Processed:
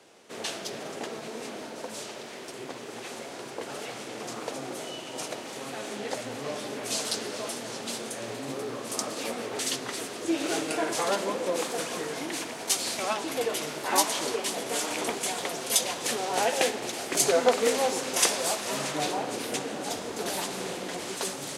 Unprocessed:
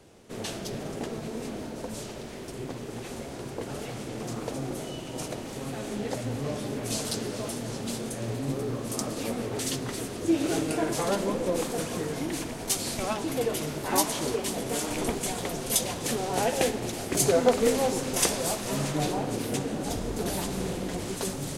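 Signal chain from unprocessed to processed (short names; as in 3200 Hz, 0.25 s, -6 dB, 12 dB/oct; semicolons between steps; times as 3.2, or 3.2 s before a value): weighting filter A; gain +2.5 dB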